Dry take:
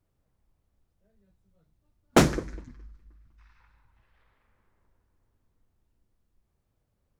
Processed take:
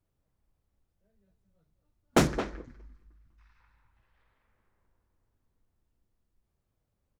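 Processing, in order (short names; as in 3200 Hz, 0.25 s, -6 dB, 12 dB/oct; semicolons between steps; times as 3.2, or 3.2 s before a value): 2.27–2.68 high shelf 7500 Hz -11.5 dB; speakerphone echo 0.22 s, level -9 dB; gain -4 dB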